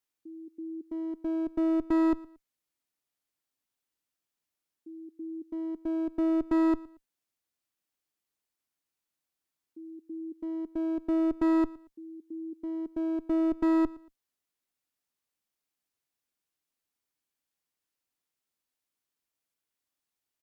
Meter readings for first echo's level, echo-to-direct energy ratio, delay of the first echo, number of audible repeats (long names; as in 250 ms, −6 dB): −21.0 dB, −20.5 dB, 115 ms, 2